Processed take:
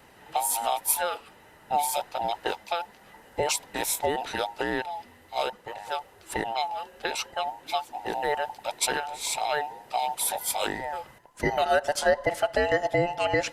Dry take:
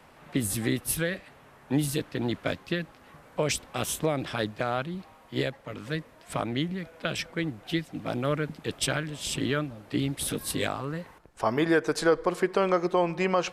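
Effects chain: every band turned upside down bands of 1 kHz; treble shelf 7.7 kHz +7.5 dB; Opus 64 kbps 48 kHz

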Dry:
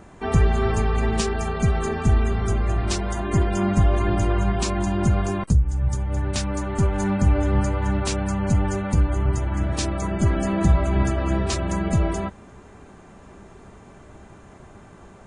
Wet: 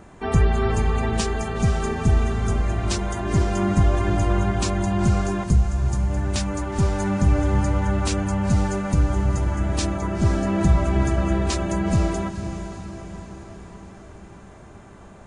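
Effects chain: 9.94–10.55 s: treble shelf 5.8 kHz -10 dB; echo that smears into a reverb 493 ms, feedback 56%, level -10.5 dB

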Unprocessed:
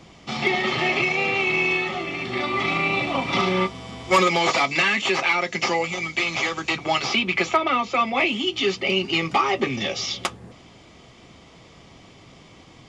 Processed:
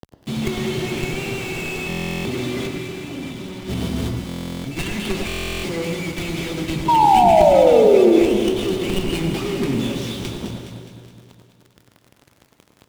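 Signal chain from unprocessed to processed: median filter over 9 samples; FFT filter 370 Hz 0 dB, 1 kHz -20 dB, 3.7 kHz +10 dB; companded quantiser 2-bit; high-pass 87 Hz 12 dB/octave; saturation -8.5 dBFS, distortion -7 dB; 2.67–4.77 s: compressor with a negative ratio -30 dBFS, ratio -0.5; tilt EQ -3 dB/octave; 6.88–8.19 s: painted sound fall 320–970 Hz -12 dBFS; echo whose repeats swap between lows and highs 104 ms, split 1.5 kHz, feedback 74%, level -5 dB; reverberation RT60 1.7 s, pre-delay 83 ms, DRR 7 dB; buffer glitch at 1.88/4.27/5.27 s, samples 1024, times 15; trim -2 dB

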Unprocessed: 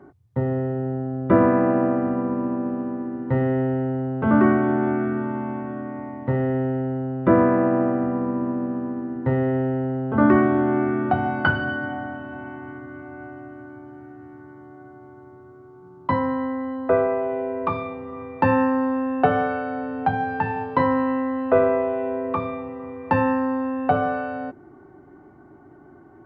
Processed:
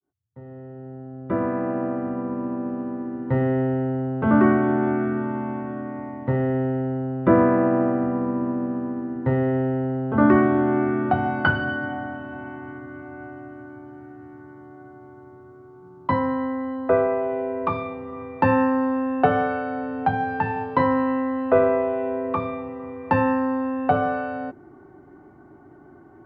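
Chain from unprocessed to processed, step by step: fade-in on the opening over 3.45 s

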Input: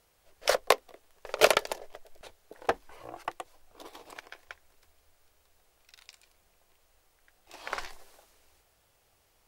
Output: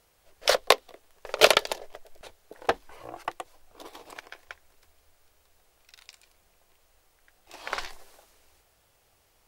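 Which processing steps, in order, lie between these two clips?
dynamic bell 3.7 kHz, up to +6 dB, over -46 dBFS, Q 1.5; trim +2.5 dB

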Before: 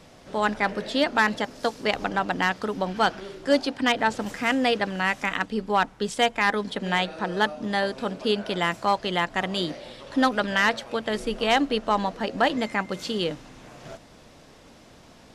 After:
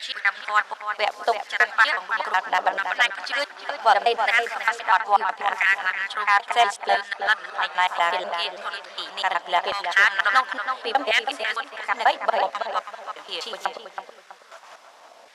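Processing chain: slices played last to first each 123 ms, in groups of 8; pre-echo 80 ms -22.5 dB; LFO high-pass saw down 0.72 Hz 600–1900 Hz; on a send: filtered feedback delay 325 ms, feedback 32%, low-pass 2.3 kHz, level -6.5 dB

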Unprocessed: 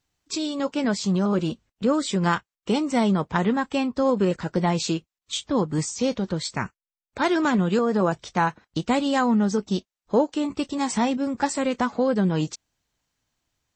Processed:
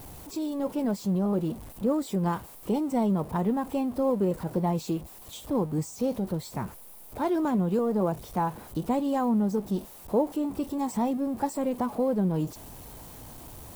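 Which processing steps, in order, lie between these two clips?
jump at every zero crossing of -30.5 dBFS; high-order bell 3.1 kHz -12.5 dB 2.8 oct; trim -5 dB

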